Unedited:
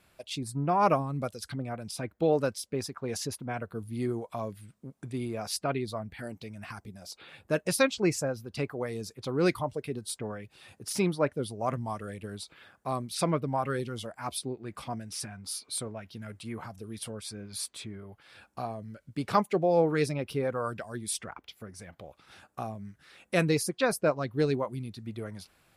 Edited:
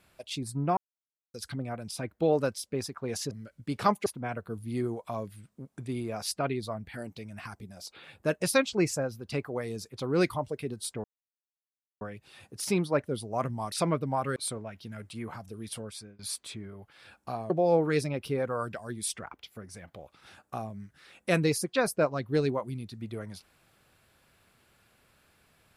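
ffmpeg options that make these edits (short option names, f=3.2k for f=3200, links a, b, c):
-filter_complex "[0:a]asplit=10[a][b][c][d][e][f][g][h][i][j];[a]atrim=end=0.77,asetpts=PTS-STARTPTS,afade=t=out:st=0.766:d=0.004:c=hsin[k];[b]atrim=start=0.77:end=1.34,asetpts=PTS-STARTPTS,volume=0[l];[c]atrim=start=1.34:end=3.312,asetpts=PTS-STARTPTS,afade=t=in:d=0.004:c=hsin[m];[d]atrim=start=18.798:end=19.552[n];[e]atrim=start=3.308:end=10.29,asetpts=PTS-STARTPTS,afade=t=out:st=6.978:d=0.004:c=hsin,apad=pad_dur=0.97[o];[f]atrim=start=10.29:end=12.002,asetpts=PTS-STARTPTS,afade=t=in:d=0.004:c=hsin[p];[g]atrim=start=13.128:end=13.772[q];[h]atrim=start=15.658:end=17.49,asetpts=PTS-STARTPTS,afade=t=out:st=1.382:d=0.45:c=qsin:silence=0.0668344[r];[i]atrim=start=17.49:end=18.802,asetpts=PTS-STARTPTS,afade=t=in:d=0.004:c=hsin:silence=0.0668344[s];[j]atrim=start=19.548[t];[k][l][m]concat=n=3:v=0:a=1[u];[u][n]acrossfade=d=0.004:c1=hsin:c2=hsin[v];[o][p]concat=n=2:v=0:a=1[w];[v][w]acrossfade=d=0.004:c1=hsin:c2=hsin[x];[x][q]acrossfade=d=0.004:c1=hsin:c2=hsin[y];[r][s]concat=n=2:v=0:a=1[z];[y][z]acrossfade=d=0.004:c1=hsin:c2=hsin[aa];[aa][t]acrossfade=d=0.004:c1=hsin:c2=hsin"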